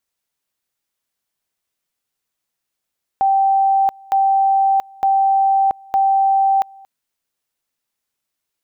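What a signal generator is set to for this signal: two-level tone 780 Hz -11.5 dBFS, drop 27 dB, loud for 0.68 s, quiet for 0.23 s, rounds 4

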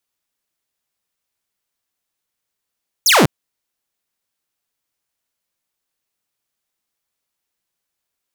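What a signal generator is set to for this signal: laser zap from 7300 Hz, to 110 Hz, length 0.20 s saw, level -6 dB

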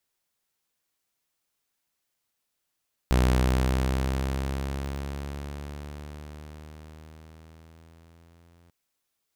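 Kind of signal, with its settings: gliding synth tone saw, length 5.59 s, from 62.5 Hz, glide +5.5 st, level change -38 dB, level -15.5 dB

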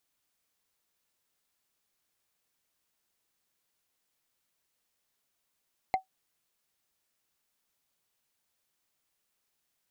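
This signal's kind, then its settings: wood hit, lowest mode 759 Hz, decay 0.12 s, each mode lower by 8.5 dB, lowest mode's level -18.5 dB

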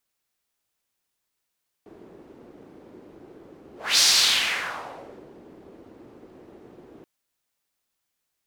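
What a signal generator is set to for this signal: whoosh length 5.18 s, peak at 2.14, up 0.27 s, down 1.40 s, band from 350 Hz, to 5000 Hz, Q 2.2, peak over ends 30.5 dB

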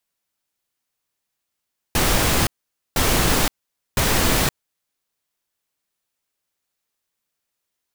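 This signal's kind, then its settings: noise bursts pink, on 0.52 s, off 0.49 s, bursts 3, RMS -18 dBFS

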